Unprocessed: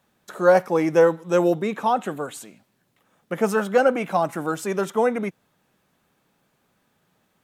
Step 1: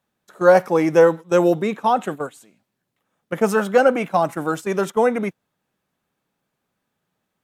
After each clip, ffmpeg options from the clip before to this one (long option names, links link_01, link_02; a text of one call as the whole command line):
ffmpeg -i in.wav -af "agate=range=-12dB:threshold=-29dB:ratio=16:detection=peak,volume=3dB" out.wav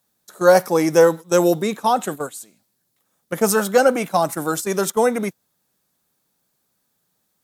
ffmpeg -i in.wav -af "aexciter=amount=3.9:drive=4.4:freq=3900" out.wav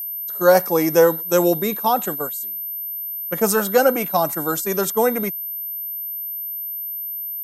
ffmpeg -i in.wav -af "highpass=90,aeval=exprs='val(0)+0.0562*sin(2*PI*13000*n/s)':channel_layout=same,volume=-1dB" out.wav